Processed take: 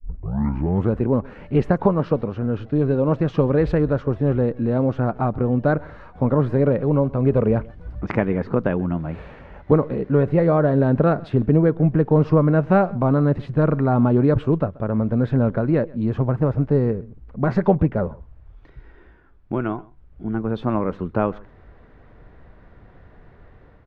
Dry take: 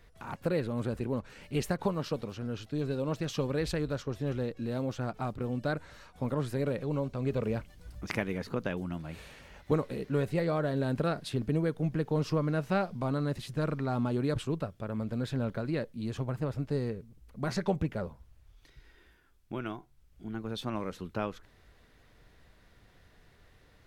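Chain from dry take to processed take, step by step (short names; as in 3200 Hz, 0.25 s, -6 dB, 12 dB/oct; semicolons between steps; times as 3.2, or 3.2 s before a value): tape start at the beginning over 0.95 s; LPF 1300 Hz 12 dB/oct; echo 0.131 s -23.5 dB; AGC gain up to 13.5 dB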